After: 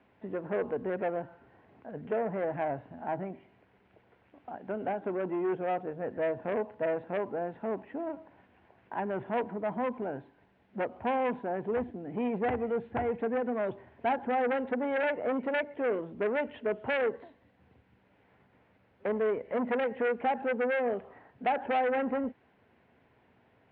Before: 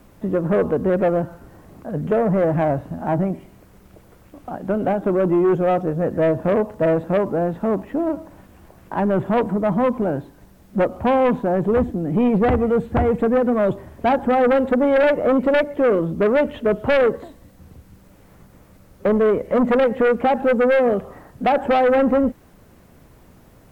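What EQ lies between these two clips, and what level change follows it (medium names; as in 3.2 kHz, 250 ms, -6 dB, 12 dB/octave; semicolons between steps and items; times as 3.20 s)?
cabinet simulation 120–2900 Hz, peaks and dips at 200 Hz -4 dB, 320 Hz -6 dB, 560 Hz -6 dB, 1.2 kHz -9 dB; peaking EQ 160 Hz -9.5 dB 0.24 oct; bass shelf 320 Hz -7 dB; -7.0 dB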